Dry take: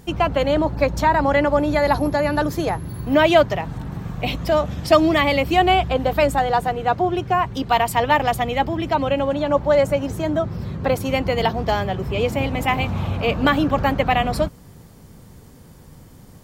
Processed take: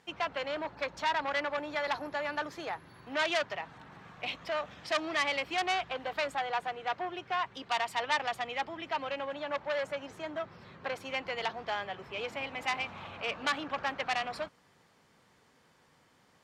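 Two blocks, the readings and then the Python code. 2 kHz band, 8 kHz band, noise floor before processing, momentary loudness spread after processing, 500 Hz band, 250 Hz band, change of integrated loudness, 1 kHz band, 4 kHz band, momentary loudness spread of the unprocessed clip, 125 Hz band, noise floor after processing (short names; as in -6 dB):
-9.0 dB, -11.0 dB, -45 dBFS, 9 LU, -17.5 dB, -22.5 dB, -14.5 dB, -14.0 dB, -9.0 dB, 7 LU, -29.5 dB, -66 dBFS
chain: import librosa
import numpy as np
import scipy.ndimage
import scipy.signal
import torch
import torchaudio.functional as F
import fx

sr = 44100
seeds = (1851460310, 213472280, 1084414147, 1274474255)

y = scipy.signal.sosfilt(scipy.signal.butter(2, 2000.0, 'lowpass', fs=sr, output='sos'), x)
y = np.diff(y, prepend=0.0)
y = fx.transformer_sat(y, sr, knee_hz=3100.0)
y = y * 10.0 ** (7.0 / 20.0)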